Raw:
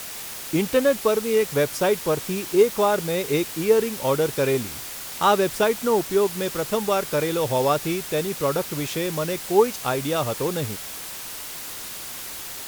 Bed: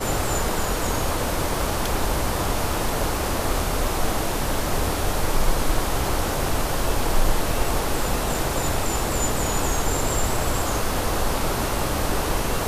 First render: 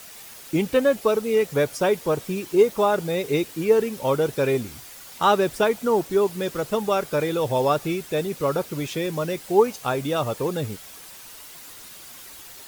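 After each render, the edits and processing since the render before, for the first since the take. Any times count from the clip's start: noise reduction 9 dB, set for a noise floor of -35 dBFS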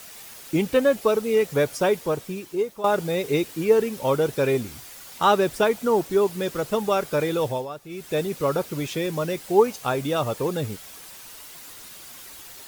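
1.86–2.84 s: fade out, to -14 dB; 7.43–8.13 s: dip -14.5 dB, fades 0.24 s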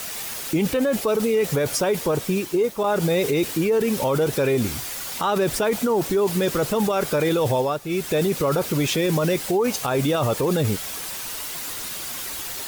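in parallel at +3 dB: compressor with a negative ratio -28 dBFS, ratio -1; on the sum: peak limiter -13 dBFS, peak gain reduction 8 dB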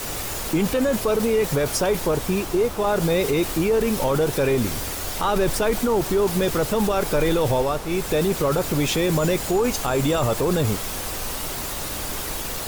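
add bed -9.5 dB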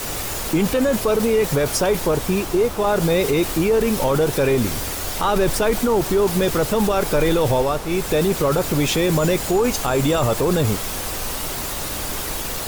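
trim +2.5 dB

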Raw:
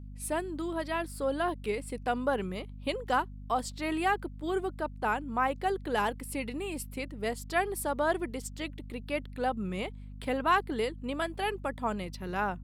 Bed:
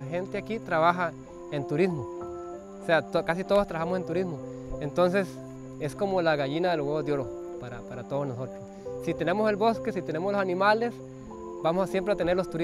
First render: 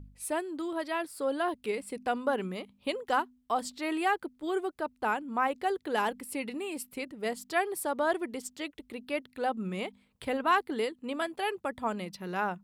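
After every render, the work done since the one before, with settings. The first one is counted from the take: de-hum 50 Hz, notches 5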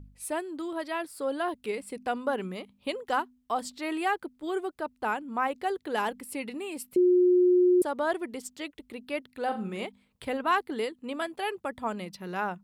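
6.96–7.82 s: bleep 360 Hz -17.5 dBFS; 9.44–9.85 s: flutter echo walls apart 7 m, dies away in 0.32 s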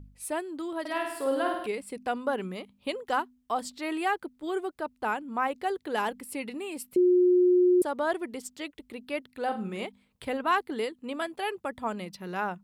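0.80–1.67 s: flutter echo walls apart 8.9 m, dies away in 0.79 s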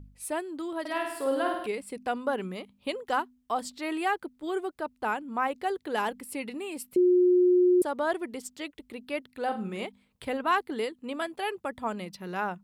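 no audible change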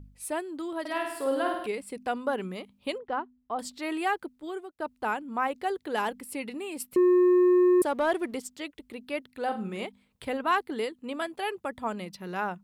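2.98–3.59 s: tape spacing loss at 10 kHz 38 dB; 4.25–4.80 s: fade out, to -18 dB; 6.80–8.40 s: waveshaping leveller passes 1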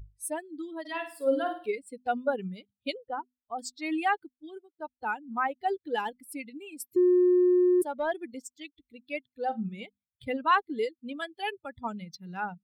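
expander on every frequency bin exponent 2; gain riding within 5 dB 2 s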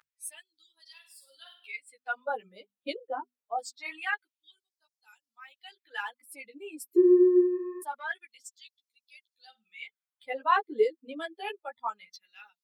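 LFO high-pass sine 0.25 Hz 350–5500 Hz; three-phase chorus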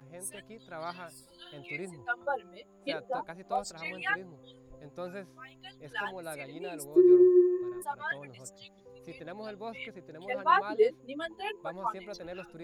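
add bed -17 dB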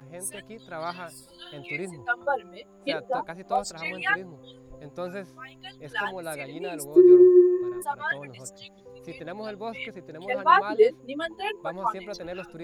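trim +6 dB

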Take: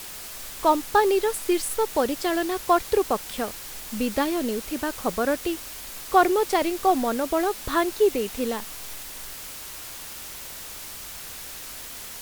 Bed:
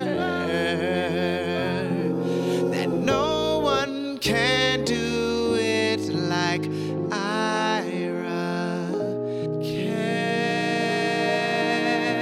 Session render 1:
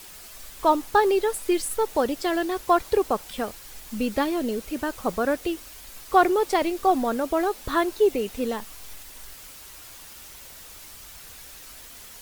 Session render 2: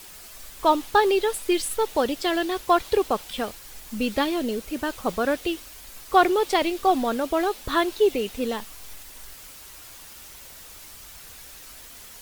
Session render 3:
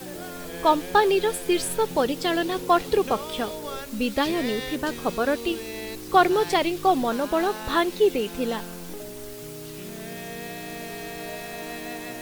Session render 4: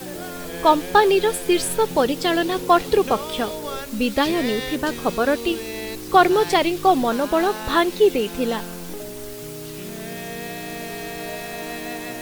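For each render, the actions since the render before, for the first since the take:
noise reduction 7 dB, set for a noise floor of -39 dBFS
dynamic bell 3.3 kHz, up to +7 dB, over -45 dBFS, Q 1.3
add bed -12.5 dB
trim +4 dB; peak limiter -2 dBFS, peak gain reduction 1 dB

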